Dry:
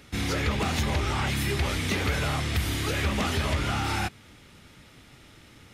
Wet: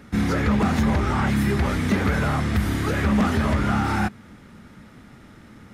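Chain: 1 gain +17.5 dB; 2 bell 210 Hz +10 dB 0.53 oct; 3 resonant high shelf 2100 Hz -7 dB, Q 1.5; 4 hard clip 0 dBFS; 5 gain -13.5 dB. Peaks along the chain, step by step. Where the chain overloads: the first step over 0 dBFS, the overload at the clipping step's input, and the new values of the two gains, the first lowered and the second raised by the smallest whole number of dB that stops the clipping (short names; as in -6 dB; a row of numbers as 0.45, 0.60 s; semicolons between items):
-0.5, +5.0, +5.0, 0.0, -13.5 dBFS; step 2, 5.0 dB; step 1 +12.5 dB, step 5 -8.5 dB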